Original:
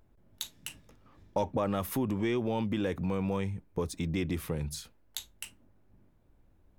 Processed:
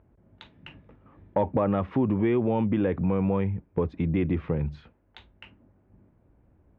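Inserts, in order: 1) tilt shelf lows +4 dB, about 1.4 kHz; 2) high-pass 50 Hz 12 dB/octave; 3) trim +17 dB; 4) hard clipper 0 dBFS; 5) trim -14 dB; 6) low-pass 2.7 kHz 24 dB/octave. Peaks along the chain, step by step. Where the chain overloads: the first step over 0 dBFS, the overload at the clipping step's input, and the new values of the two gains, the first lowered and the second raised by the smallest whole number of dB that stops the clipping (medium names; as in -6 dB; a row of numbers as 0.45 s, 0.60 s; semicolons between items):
-14.5 dBFS, -14.0 dBFS, +3.0 dBFS, 0.0 dBFS, -14.0 dBFS, -13.5 dBFS; step 3, 3.0 dB; step 3 +14 dB, step 5 -11 dB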